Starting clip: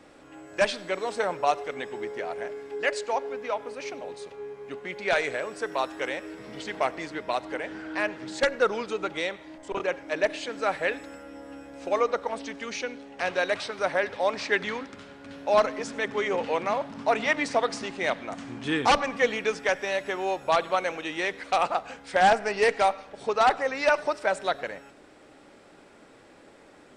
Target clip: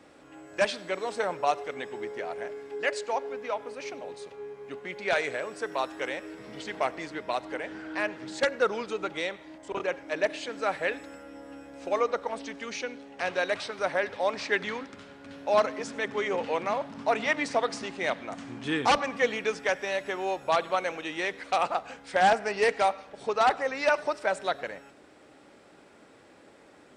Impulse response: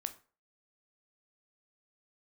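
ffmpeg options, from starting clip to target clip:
-af "highpass=53,volume=0.794"

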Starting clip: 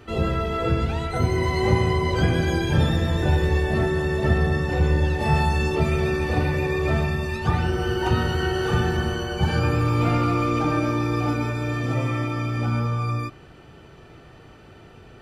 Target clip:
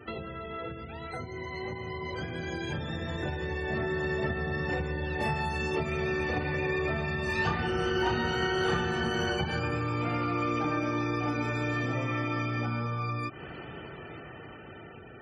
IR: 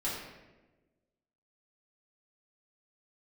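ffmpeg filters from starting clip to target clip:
-filter_complex "[0:a]acompressor=threshold=0.02:ratio=16,highpass=f=150:p=1,asettb=1/sr,asplit=3[s0][s1][s2];[s0]atrim=end=7.244[s3];[s1]atrim=start=7.24:end=9.3,asetpts=PTS-STARTPTS,afade=t=in:d=0.004:c=qsin,afade=t=out:st=2.056:d=0.004:c=qsin,aecho=1:1:30|63|99.3|139.2|183.2:0.631|0.398|0.251|0.158|0.1,atrim=end_sample=90846[s4];[s2]atrim=start=9.296[s5];[s3][s4]acrossfade=d=0.004:c1=hsin:c2=qsin[s6];[s6][s5]acrossfade=d=0.004:c1=qsin:c2=hsin,dynaudnorm=f=790:g=7:m=2.82,equalizer=f=2000:t=o:w=0.76:g=4,afftfilt=real='re*gte(hypot(re,im),0.00501)':imag='im*gte(hypot(re,im),0.00501)':win_size=1024:overlap=0.75"

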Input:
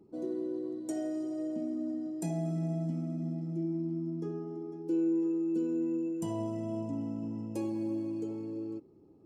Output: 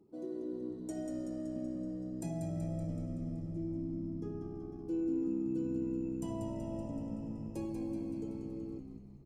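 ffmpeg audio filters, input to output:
-filter_complex "[0:a]asplit=9[s0][s1][s2][s3][s4][s5][s6][s7][s8];[s1]adelay=189,afreqshift=-64,volume=0.473[s9];[s2]adelay=378,afreqshift=-128,volume=0.285[s10];[s3]adelay=567,afreqshift=-192,volume=0.17[s11];[s4]adelay=756,afreqshift=-256,volume=0.102[s12];[s5]adelay=945,afreqshift=-320,volume=0.0617[s13];[s6]adelay=1134,afreqshift=-384,volume=0.0367[s14];[s7]adelay=1323,afreqshift=-448,volume=0.0221[s15];[s8]adelay=1512,afreqshift=-512,volume=0.0132[s16];[s0][s9][s10][s11][s12][s13][s14][s15][s16]amix=inputs=9:normalize=0,volume=0.531"

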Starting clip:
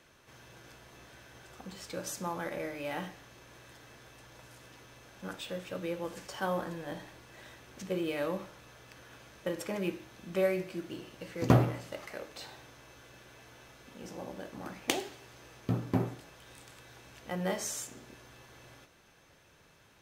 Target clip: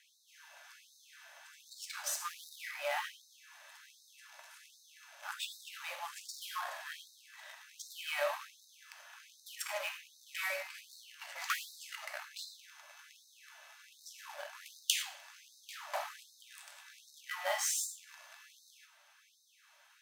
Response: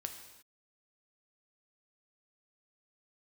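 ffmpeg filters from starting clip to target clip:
-filter_complex "[0:a]asubboost=boost=11:cutoff=110,aeval=exprs='val(0)+0.00224*(sin(2*PI*50*n/s)+sin(2*PI*2*50*n/s)/2+sin(2*PI*3*50*n/s)/3+sin(2*PI*4*50*n/s)/4+sin(2*PI*5*50*n/s)/5)':c=same,asplit=2[s0][s1];[s1]acrusher=bits=5:mix=0:aa=0.5,volume=0.631[s2];[s0][s2]amix=inputs=2:normalize=0[s3];[1:a]atrim=start_sample=2205,afade=t=out:st=0.17:d=0.01,atrim=end_sample=7938[s4];[s3][s4]afir=irnorm=-1:irlink=0,afftfilt=real='re*gte(b*sr/1024,520*pow(3700/520,0.5+0.5*sin(2*PI*1.3*pts/sr)))':imag='im*gte(b*sr/1024,520*pow(3700/520,0.5+0.5*sin(2*PI*1.3*pts/sr)))':win_size=1024:overlap=0.75,volume=1.26"

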